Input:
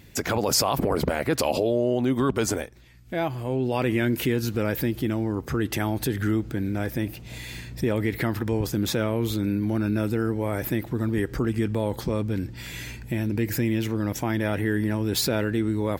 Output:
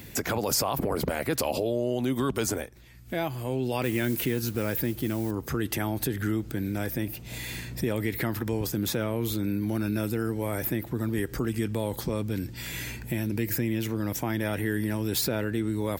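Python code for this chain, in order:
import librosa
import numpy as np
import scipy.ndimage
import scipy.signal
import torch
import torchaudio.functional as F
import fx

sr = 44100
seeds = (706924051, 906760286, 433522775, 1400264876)

y = fx.mod_noise(x, sr, seeds[0], snr_db=25, at=(3.83, 5.31))
y = fx.high_shelf(y, sr, hz=8600.0, db=10.5)
y = fx.band_squash(y, sr, depth_pct=40)
y = F.gain(torch.from_numpy(y), -4.0).numpy()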